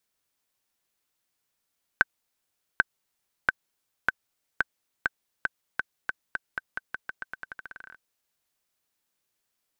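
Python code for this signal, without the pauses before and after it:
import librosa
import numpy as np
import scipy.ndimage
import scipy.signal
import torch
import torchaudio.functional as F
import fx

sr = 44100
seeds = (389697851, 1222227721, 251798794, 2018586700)

y = fx.bouncing_ball(sr, first_gap_s=0.79, ratio=0.87, hz=1540.0, decay_ms=26.0, level_db=-4.5)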